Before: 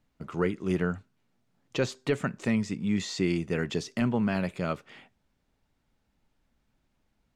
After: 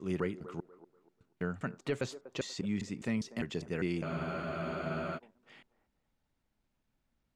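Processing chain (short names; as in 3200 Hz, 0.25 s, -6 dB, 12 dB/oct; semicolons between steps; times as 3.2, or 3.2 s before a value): slices in reverse order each 0.201 s, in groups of 4; band-limited delay 0.242 s, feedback 31%, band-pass 590 Hz, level -13.5 dB; spectral freeze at 4.06, 1.11 s; gain -7 dB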